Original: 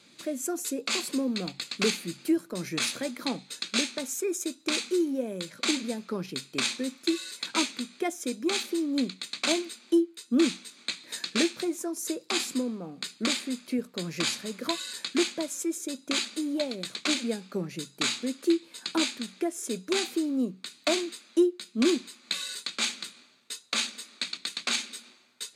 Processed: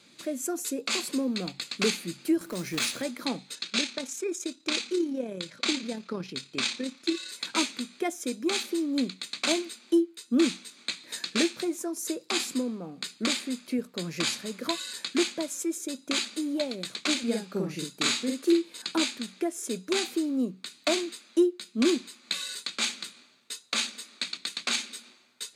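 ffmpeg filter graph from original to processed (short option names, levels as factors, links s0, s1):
-filter_complex "[0:a]asettb=1/sr,asplit=3[s0][s1][s2];[s0]atrim=end=2.414[s3];[s1]atrim=start=2.41:end=3.02,asetpts=PTS-STARTPTS,afade=t=in:d=0.004:c=qsin,afade=t=out:st=0.606:d=0.004:c=qsin,acrusher=bits=3:mode=log:mix=0:aa=0.000001,acompressor=mode=upward:threshold=0.0251:ratio=2.5:attack=3.2:release=140:knee=2.83:detection=peak[s4];[s2]atrim=start=3.016[s5];[s3][s4]acrossfade=d=0.004:c1=hsin:c2=qsin[s6];[s6][s5]acrossfade=d=0.004:c1=qsin:c2=hsin,asettb=1/sr,asplit=3[s7][s8][s9];[s7]atrim=end=3.554[s10];[s8]atrim=start=3.55:end=7.29,asetpts=PTS-STARTPTS,afade=t=in:d=0.004:c=qsin,afade=t=out:st=3.736:d=0.004:c=qsin,lowpass=4600,aemphasis=mode=production:type=50kf,tremolo=f=35:d=0.4[s11];[s9]atrim=start=7.286[s12];[s10][s11]acrossfade=d=0.004:c1=hsin:c2=qsin[s13];[s13][s12]acrossfade=d=0.004:c1=qsin:c2=hsin,asettb=1/sr,asplit=3[s14][s15][s16];[s14]atrim=end=17.234[s17];[s15]atrim=start=17.23:end=18.82,asetpts=PTS-STARTPTS,afade=t=in:d=0.004:c=qsin,afade=t=out:st=1.586:d=0.004:c=qsin,highpass=61,asplit=2[s18][s19];[s19]adelay=47,volume=0.794[s20];[s18][s20]amix=inputs=2:normalize=0,atrim=end_sample=70119[s21];[s16]atrim=start=18.816[s22];[s17][s21]acrossfade=d=0.004:c1=hsin:c2=qsin[s23];[s23][s22]acrossfade=d=0.004:c1=qsin:c2=hsin"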